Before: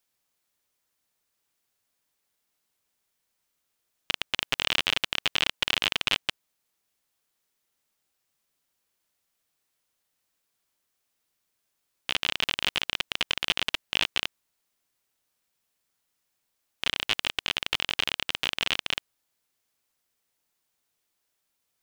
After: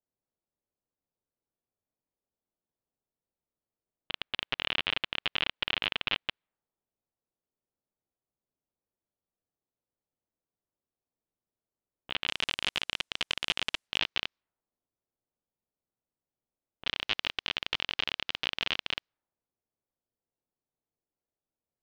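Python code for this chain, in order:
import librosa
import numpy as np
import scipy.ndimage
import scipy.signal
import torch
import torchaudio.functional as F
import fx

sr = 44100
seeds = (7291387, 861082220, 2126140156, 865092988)

y = fx.lowpass(x, sr, hz=fx.steps((0.0, 3700.0), (12.28, 11000.0), (13.98, 5100.0)), slope=24)
y = fx.env_lowpass(y, sr, base_hz=620.0, full_db=-28.5)
y = F.gain(torch.from_numpy(y), -4.0).numpy()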